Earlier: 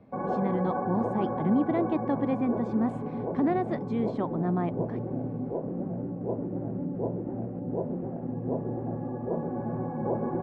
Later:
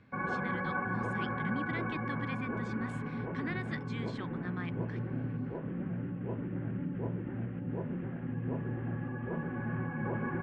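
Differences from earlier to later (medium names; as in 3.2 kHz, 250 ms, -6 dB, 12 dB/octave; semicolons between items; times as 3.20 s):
speech -9.0 dB; master: add FFT filter 130 Hz 0 dB, 710 Hz -13 dB, 1.6 kHz +13 dB, 3.1 kHz +15 dB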